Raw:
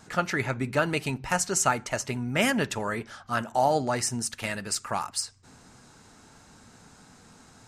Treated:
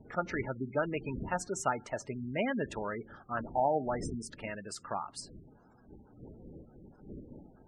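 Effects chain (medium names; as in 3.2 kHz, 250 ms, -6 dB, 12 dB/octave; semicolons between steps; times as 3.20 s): wind noise 230 Hz -41 dBFS; tilt shelf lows +4 dB, about 1.1 kHz; spectral gate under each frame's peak -20 dB strong; tone controls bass -7 dB, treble -4 dB; trim -7 dB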